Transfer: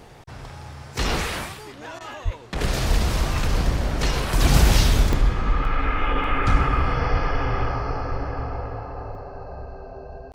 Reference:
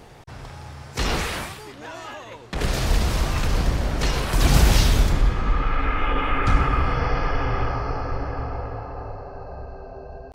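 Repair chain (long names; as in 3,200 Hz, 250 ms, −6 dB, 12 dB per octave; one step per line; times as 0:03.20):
high-pass at the plosives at 0:02.24/0:07.12
repair the gap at 0:00.98/0:05.13/0:05.65/0:06.24/0:09.15, 1.3 ms
repair the gap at 0:01.99, 14 ms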